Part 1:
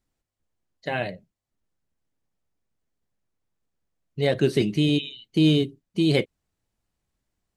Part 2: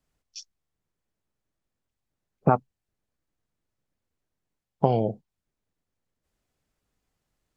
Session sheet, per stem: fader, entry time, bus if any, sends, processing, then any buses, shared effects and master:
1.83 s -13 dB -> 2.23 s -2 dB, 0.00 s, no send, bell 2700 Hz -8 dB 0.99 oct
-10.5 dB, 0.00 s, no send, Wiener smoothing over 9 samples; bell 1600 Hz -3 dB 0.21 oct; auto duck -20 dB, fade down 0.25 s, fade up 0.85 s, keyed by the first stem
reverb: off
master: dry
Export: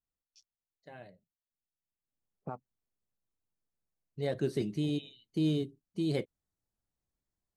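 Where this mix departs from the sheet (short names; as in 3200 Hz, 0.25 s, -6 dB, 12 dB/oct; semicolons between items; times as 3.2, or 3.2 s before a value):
stem 1 -13.0 dB -> -21.5 dB; stem 2 -10.5 dB -> -21.0 dB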